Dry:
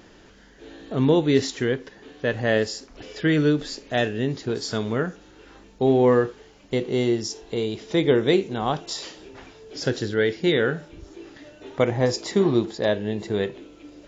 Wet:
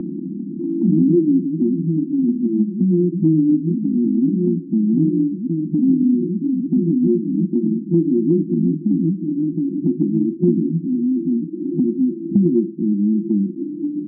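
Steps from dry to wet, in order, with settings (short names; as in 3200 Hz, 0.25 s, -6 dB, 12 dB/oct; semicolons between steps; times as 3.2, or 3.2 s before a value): echoes that change speed 86 ms, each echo +3 st, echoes 3; FFT band-pass 160–360 Hz; in parallel at +2.5 dB: compressor 5:1, threshold -38 dBFS, peak gain reduction 20.5 dB; on the sum: tilt -4.5 dB/oct; three-band squash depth 70%; gain -1.5 dB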